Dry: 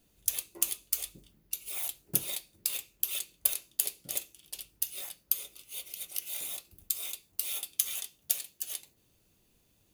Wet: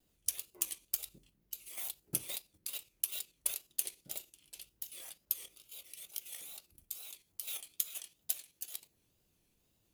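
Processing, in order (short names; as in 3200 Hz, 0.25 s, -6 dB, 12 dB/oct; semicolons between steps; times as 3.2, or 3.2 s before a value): level quantiser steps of 9 dB; wow and flutter 140 cents; gain -3.5 dB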